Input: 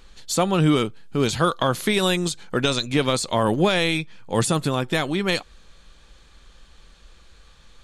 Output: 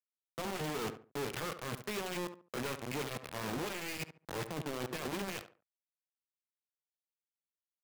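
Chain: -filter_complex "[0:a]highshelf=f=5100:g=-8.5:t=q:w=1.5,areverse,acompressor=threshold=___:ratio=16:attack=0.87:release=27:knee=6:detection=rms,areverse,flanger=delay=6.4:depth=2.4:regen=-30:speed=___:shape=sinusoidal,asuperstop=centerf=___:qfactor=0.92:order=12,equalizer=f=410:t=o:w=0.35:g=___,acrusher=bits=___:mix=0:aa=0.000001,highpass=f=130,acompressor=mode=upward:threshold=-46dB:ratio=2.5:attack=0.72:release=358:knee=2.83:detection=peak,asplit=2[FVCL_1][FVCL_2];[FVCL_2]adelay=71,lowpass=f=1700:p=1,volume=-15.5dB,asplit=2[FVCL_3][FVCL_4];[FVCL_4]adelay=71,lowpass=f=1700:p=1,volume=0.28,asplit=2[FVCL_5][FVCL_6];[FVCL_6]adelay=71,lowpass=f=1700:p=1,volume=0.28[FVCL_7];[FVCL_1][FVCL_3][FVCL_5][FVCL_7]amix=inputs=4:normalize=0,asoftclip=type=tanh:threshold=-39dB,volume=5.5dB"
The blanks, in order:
-31dB, 0.67, 5300, 6, 5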